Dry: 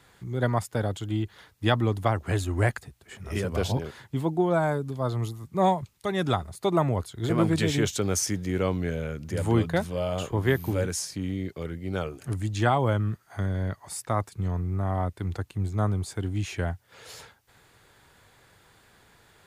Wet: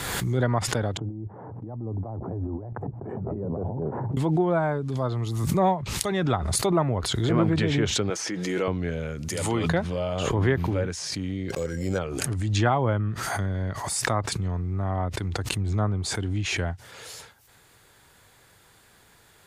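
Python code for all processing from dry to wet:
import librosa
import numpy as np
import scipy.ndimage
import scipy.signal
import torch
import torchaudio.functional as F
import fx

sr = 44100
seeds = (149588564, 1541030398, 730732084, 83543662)

y = fx.chain(x, sr, fx.ellip_bandpass(low_hz=110.0, high_hz=860.0, order=3, stop_db=60),
    fx.low_shelf(hz=330.0, db=4.0),
    fx.over_compress(threshold_db=-35.0, ratio=-1.0), at=(0.97, 4.17))
y = fx.chain(y, sr, fx.highpass(hz=300.0, slope=12),
    fx.comb(ms=6.1, depth=0.44), at=(8.1, 8.68))
y = fx.chain(y, sr, fx.tilt_eq(slope=2.5),
    fx.notch(hz=1600.0, q=8.7), at=(9.28, 9.69))
y = fx.chain(y, sr, fx.small_body(hz=(520.0, 1600.0), ring_ms=70, db=13),
    fx.resample_bad(factor=6, down='none', up='hold'), at=(11.5, 11.99))
y = fx.high_shelf(y, sr, hz=6400.0, db=8.5)
y = fx.env_lowpass_down(y, sr, base_hz=2400.0, full_db=-21.0)
y = fx.pre_swell(y, sr, db_per_s=28.0)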